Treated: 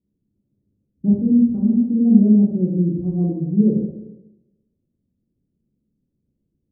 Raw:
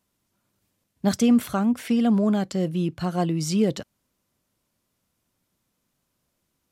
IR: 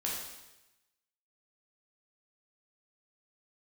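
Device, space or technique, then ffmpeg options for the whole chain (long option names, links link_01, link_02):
next room: -filter_complex "[0:a]lowpass=frequency=370:width=0.5412,lowpass=frequency=370:width=1.3066[link_01];[1:a]atrim=start_sample=2205[link_02];[link_01][link_02]afir=irnorm=-1:irlink=0,asettb=1/sr,asplit=3[link_03][link_04][link_05];[link_03]atrim=end=1.224[link_06];[link_04]atrim=start=1.22:end=1.7,asetpts=PTS-STARTPTS,afade=type=in:duration=0.004:curve=qsin,afade=type=out:start_time=0.476:duration=0.004:curve=qsin,equalizer=frequency=560:width=1.3:gain=-6[link_07];[link_05]atrim=start=1.696[link_08];[link_06][link_07]acrossfade=duration=0.004:curve1=hsin:curve2=qsin[link_09];[link_09][link_08]acrossfade=duration=0.004:curve1=qsin:curve2=hsin,volume=2.5dB"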